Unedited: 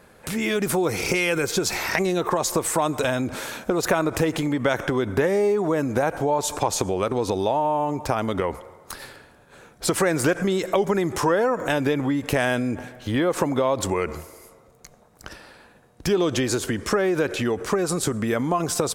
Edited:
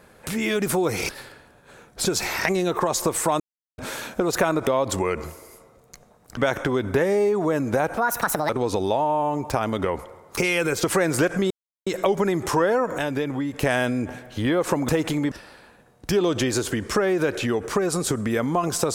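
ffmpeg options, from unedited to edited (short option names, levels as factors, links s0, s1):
-filter_complex "[0:a]asplit=16[s0][s1][s2][s3][s4][s5][s6][s7][s8][s9][s10][s11][s12][s13][s14][s15];[s0]atrim=end=1.092[s16];[s1]atrim=start=8.928:end=9.892[s17];[s2]atrim=start=1.548:end=2.9,asetpts=PTS-STARTPTS,afade=t=out:st=1.348:d=0.004:c=hsin[s18];[s3]atrim=start=2.9:end=3.28,asetpts=PTS-STARTPTS,volume=0[s19];[s4]atrim=start=3.28:end=4.172,asetpts=PTS-STARTPTS,afade=t=in:d=0.004:c=hsin[s20];[s5]atrim=start=13.578:end=15.282[s21];[s6]atrim=start=4.598:end=6.204[s22];[s7]atrim=start=6.2:end=7.05,asetpts=PTS-STARTPTS,asetrate=71442,aresample=44100[s23];[s8]atrim=start=7.046:end=8.932[s24];[s9]atrim=start=1.088:end=1.552[s25];[s10]atrim=start=9.888:end=10.56,asetpts=PTS-STARTPTS,afade=t=out:st=0.668:d=0.004:c=hsin,apad=pad_dur=0.36[s26];[s11]atrim=start=10.56:end=11.682,asetpts=PTS-STARTPTS,afade=t=in:d=0.004:c=hsin[s27];[s12]atrim=start=11.678:end=12.322,asetpts=PTS-STARTPTS,volume=0.668[s28];[s13]atrim=start=12.318:end=13.582[s29];[s14]atrim=start=4.168:end=4.602[s30];[s15]atrim=start=15.278[s31];[s16][s17]acrossfade=d=0.004:c1=hsin:c2=hsin[s32];[s18][s19][s20]concat=n=3:v=0:a=1[s33];[s32][s33]acrossfade=d=0.004:c1=hsin:c2=hsin[s34];[s34][s21]acrossfade=d=0.004:c1=hsin:c2=hsin[s35];[s35][s22]acrossfade=d=0.004:c1=hsin:c2=hsin[s36];[s36][s23]acrossfade=d=0.004:c1=hsin:c2=hsin[s37];[s37][s24]acrossfade=d=0.004:c1=hsin:c2=hsin[s38];[s38][s25]acrossfade=d=0.004:c1=hsin:c2=hsin[s39];[s26][s27]concat=n=2:v=0:a=1[s40];[s39][s40]acrossfade=d=0.004:c1=hsin:c2=hsin[s41];[s41][s28]acrossfade=d=0.004:c1=hsin:c2=hsin[s42];[s42][s29]acrossfade=d=0.004:c1=hsin:c2=hsin[s43];[s43][s30]acrossfade=d=0.004:c1=hsin:c2=hsin[s44];[s44][s31]acrossfade=d=0.004:c1=hsin:c2=hsin"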